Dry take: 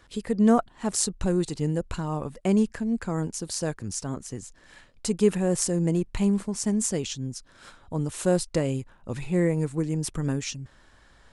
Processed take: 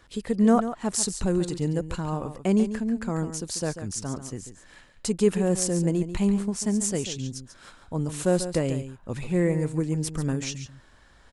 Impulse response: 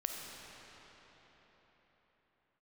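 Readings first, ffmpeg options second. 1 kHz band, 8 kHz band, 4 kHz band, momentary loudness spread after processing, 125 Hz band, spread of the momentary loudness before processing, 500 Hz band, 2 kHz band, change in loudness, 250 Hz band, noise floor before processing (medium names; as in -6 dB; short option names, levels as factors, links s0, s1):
+0.5 dB, +0.5 dB, +0.5 dB, 12 LU, +0.5 dB, 12 LU, +0.5 dB, +0.5 dB, +0.5 dB, +0.5 dB, -57 dBFS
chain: -af "aecho=1:1:141:0.282"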